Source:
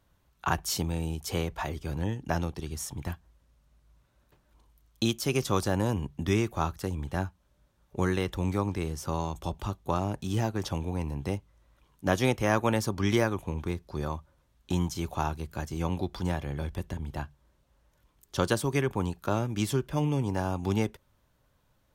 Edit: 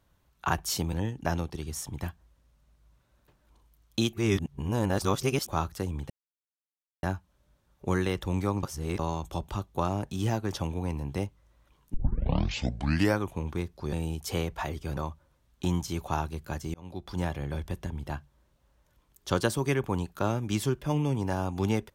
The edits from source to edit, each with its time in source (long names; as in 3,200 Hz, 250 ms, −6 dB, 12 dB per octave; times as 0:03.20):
0:00.93–0:01.97: move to 0:14.04
0:05.17–0:06.52: reverse
0:07.14: splice in silence 0.93 s
0:08.74–0:09.10: reverse
0:12.05: tape start 1.27 s
0:15.81–0:16.33: fade in